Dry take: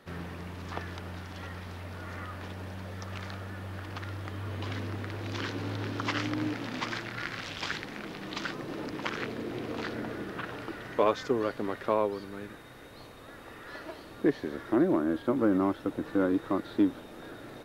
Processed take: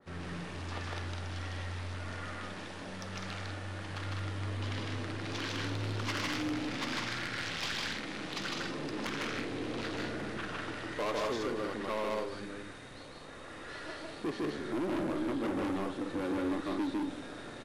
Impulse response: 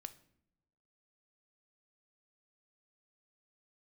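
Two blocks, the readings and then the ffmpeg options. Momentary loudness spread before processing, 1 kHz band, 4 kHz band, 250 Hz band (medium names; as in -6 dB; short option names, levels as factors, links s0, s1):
16 LU, -3.0 dB, +2.0 dB, -5.0 dB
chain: -filter_complex "[0:a]aecho=1:1:154.5|201.2:0.891|0.501,asplit=2[s0][s1];[s1]acrusher=bits=5:dc=4:mix=0:aa=0.000001,volume=0.316[s2];[s0][s2]amix=inputs=2:normalize=0,aresample=22050,aresample=44100,asoftclip=type=tanh:threshold=0.0501[s3];[1:a]atrim=start_sample=2205,asetrate=41013,aresample=44100[s4];[s3][s4]afir=irnorm=-1:irlink=0,adynamicequalizer=threshold=0.00251:dfrequency=2000:dqfactor=0.7:tfrequency=2000:tqfactor=0.7:attack=5:release=100:ratio=0.375:range=2.5:mode=boostabove:tftype=highshelf"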